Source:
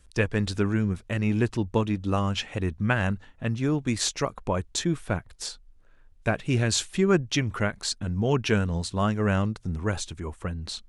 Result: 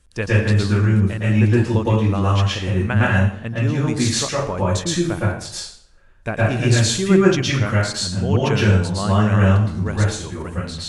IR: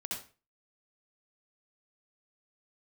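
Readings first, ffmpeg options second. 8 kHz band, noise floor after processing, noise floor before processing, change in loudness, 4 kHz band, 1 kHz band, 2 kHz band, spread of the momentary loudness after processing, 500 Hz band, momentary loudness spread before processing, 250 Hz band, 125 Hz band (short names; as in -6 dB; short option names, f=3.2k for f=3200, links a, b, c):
+6.5 dB, -48 dBFS, -55 dBFS, +8.5 dB, +6.5 dB, +7.0 dB, +7.5 dB, 8 LU, +7.0 dB, 8 LU, +7.0 dB, +11.0 dB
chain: -filter_complex "[1:a]atrim=start_sample=2205,asetrate=24696,aresample=44100[a];[0:a][a]afir=irnorm=-1:irlink=0,volume=1.5dB"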